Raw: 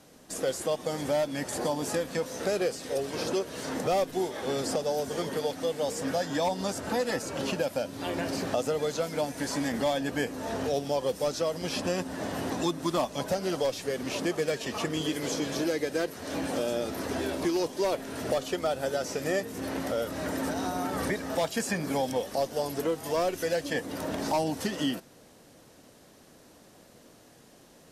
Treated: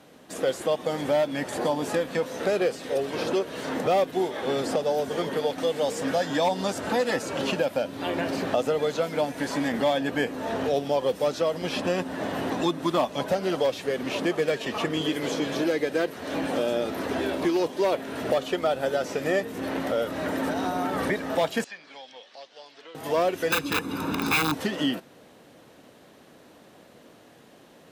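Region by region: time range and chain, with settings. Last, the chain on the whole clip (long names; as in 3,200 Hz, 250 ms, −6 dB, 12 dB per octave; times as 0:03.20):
0:05.58–0:07.60: parametric band 7,000 Hz +4 dB 1.8 octaves + upward compression, threshold −30 dBFS
0:21.64–0:22.95: low-pass filter 4,600 Hz 24 dB per octave + first difference
0:23.50–0:24.54: wrap-around overflow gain 22.5 dB + comb filter 0.8 ms, depth 78%
whole clip: high-pass filter 150 Hz 6 dB per octave; flat-topped bell 7,700 Hz −8.5 dB; level +4.5 dB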